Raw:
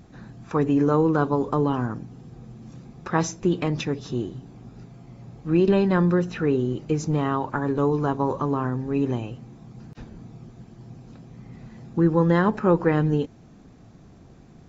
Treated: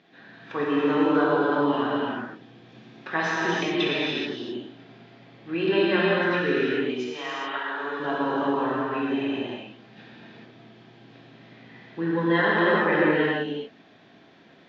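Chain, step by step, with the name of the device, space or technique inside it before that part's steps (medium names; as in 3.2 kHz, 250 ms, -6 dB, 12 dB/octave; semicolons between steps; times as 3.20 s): phone earpiece (cabinet simulation 490–4000 Hz, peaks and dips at 500 Hz -6 dB, 820 Hz -7 dB, 1.2 kHz -9 dB, 1.8 kHz +4 dB, 3.3 kHz +6 dB); 6.73–8.00 s: high-pass 1.3 kHz 6 dB/octave; gated-style reverb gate 450 ms flat, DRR -7.5 dB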